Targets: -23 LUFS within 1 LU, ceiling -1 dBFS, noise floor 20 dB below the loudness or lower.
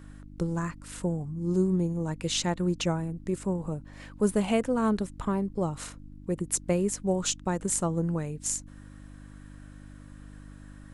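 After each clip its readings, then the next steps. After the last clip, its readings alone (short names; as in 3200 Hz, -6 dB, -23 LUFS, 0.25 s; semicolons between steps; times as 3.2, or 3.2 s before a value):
hum 50 Hz; harmonics up to 300 Hz; hum level -45 dBFS; loudness -29.5 LUFS; peak -10.0 dBFS; loudness target -23.0 LUFS
-> de-hum 50 Hz, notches 6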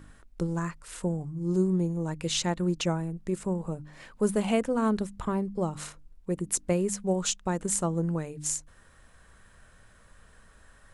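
hum none; loudness -29.5 LUFS; peak -10.0 dBFS; loudness target -23.0 LUFS
-> gain +6.5 dB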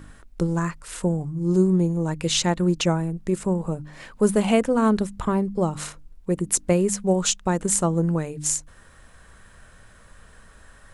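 loudness -23.0 LUFS; peak -3.5 dBFS; noise floor -51 dBFS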